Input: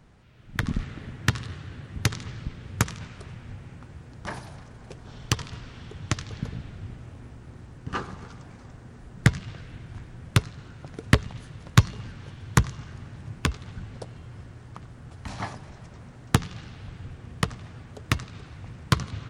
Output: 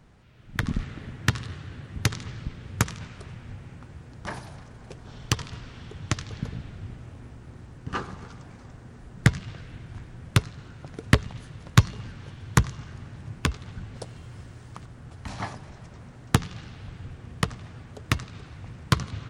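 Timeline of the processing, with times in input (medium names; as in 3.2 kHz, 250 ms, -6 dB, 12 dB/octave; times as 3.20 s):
13.96–14.86 s: treble shelf 3.8 kHz +7 dB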